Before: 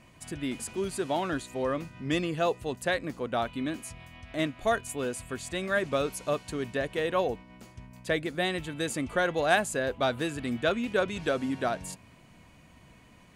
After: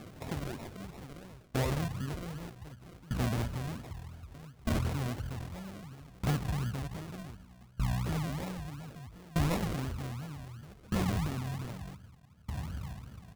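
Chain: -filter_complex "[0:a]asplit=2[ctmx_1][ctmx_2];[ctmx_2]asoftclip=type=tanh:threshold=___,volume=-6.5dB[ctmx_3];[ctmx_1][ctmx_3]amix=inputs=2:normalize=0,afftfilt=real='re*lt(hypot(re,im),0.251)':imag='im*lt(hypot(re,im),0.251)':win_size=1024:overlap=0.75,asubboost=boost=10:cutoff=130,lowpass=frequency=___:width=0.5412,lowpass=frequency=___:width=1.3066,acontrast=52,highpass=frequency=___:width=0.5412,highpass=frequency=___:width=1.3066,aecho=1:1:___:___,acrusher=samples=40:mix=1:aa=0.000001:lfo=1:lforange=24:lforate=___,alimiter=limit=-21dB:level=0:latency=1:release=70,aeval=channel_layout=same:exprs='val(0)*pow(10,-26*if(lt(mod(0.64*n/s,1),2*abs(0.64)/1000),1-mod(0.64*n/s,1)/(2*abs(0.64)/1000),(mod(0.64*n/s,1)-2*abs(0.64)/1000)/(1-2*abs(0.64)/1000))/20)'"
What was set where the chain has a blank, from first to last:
-25.5dB, 7.5k, 7.5k, 57, 57, 144, 0.0891, 2.8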